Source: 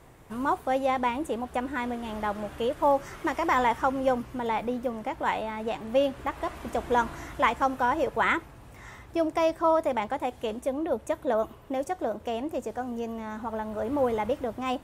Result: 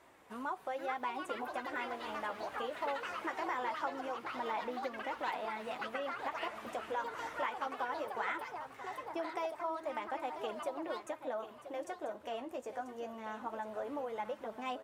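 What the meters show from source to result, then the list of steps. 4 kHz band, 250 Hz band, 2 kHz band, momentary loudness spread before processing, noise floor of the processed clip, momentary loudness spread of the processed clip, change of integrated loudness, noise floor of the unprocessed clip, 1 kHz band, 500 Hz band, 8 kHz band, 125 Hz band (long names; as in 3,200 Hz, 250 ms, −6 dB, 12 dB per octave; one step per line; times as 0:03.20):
−7.5 dB, −15.0 dB, −8.5 dB, 9 LU, −55 dBFS, 5 LU, −11.5 dB, −50 dBFS, −10.5 dB, −12.5 dB, −10.5 dB, −20.5 dB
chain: downward compressor 5 to 1, threshold −30 dBFS, peak gain reduction 11 dB
delay with pitch and tempo change per echo 565 ms, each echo +6 semitones, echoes 2, each echo −6 dB
flanger 0.2 Hz, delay 3 ms, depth 9.2 ms, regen −39%
high-pass filter 760 Hz 6 dB per octave
high-shelf EQ 5,200 Hz −8.5 dB
single-tap delay 989 ms −12 dB
level +1.5 dB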